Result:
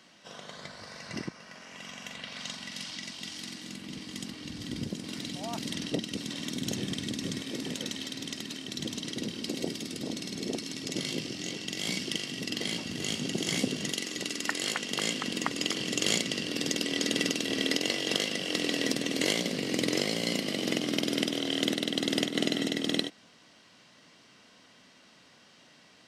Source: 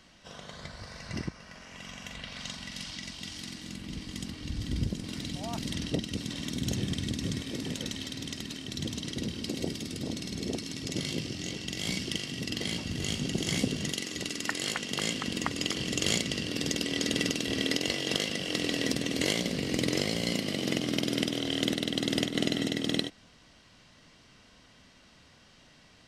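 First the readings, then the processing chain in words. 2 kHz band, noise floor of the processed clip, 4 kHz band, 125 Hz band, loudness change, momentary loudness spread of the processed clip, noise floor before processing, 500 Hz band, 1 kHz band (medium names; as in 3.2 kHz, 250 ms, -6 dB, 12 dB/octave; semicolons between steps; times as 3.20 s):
+1.0 dB, -58 dBFS, +1.0 dB, -5.5 dB, +0.5 dB, 12 LU, -58 dBFS, +1.0 dB, +1.0 dB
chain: high-pass 190 Hz 12 dB/octave; trim +1 dB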